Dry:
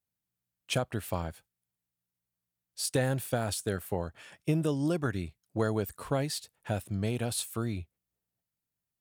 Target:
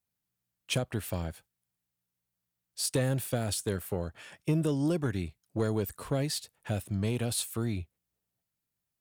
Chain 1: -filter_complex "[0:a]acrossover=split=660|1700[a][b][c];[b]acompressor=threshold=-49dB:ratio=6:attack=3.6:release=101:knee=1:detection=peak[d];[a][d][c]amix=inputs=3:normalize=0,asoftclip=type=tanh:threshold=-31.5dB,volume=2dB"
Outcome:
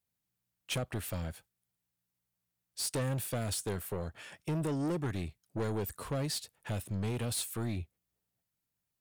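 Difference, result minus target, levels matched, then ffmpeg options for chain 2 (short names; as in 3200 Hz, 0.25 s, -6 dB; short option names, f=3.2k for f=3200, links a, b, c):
soft clip: distortion +12 dB
-filter_complex "[0:a]acrossover=split=660|1700[a][b][c];[b]acompressor=threshold=-49dB:ratio=6:attack=3.6:release=101:knee=1:detection=peak[d];[a][d][c]amix=inputs=3:normalize=0,asoftclip=type=tanh:threshold=-20.5dB,volume=2dB"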